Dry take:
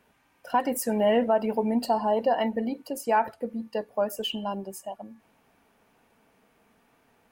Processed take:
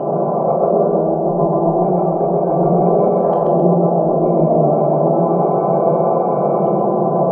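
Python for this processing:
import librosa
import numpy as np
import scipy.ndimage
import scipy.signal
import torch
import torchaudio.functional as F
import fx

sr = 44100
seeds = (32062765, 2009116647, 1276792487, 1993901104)

p1 = fx.bin_compress(x, sr, power=0.2)
p2 = scipy.signal.sosfilt(scipy.signal.butter(2, 6200.0, 'lowpass', fs=sr, output='sos'), p1)
p3 = fx.spec_gate(p2, sr, threshold_db=-20, keep='strong')
p4 = fx.highpass(p3, sr, hz=42.0, slope=6)
p5 = fx.band_shelf(p4, sr, hz=2000.0, db=-16.0, octaves=1.3)
p6 = fx.over_compress(p5, sr, threshold_db=-19.0, ratio=-0.5)
p7 = fx.filter_lfo_lowpass(p6, sr, shape='saw_up', hz=0.3, low_hz=910.0, high_hz=1900.0, q=0.73)
p8 = fx.pitch_keep_formants(p7, sr, semitones=-4.5)
p9 = p8 + fx.echo_feedback(p8, sr, ms=132, feedback_pct=44, wet_db=-3.0, dry=0)
p10 = fx.room_shoebox(p9, sr, seeds[0], volume_m3=940.0, walls='furnished', distance_m=2.9)
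y = F.gain(torch.from_numpy(p10), 1.5).numpy()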